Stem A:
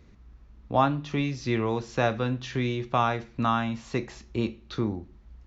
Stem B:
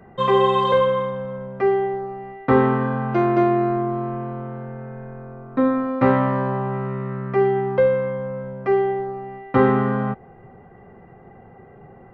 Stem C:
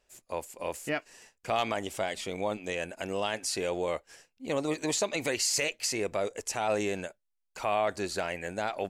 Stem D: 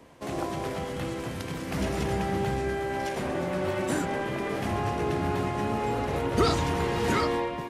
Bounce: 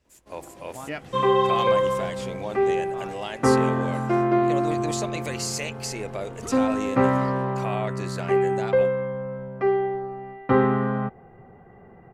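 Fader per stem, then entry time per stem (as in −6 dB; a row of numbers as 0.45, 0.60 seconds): −18.0, −3.0, −2.0, −15.0 decibels; 0.00, 0.95, 0.00, 0.05 seconds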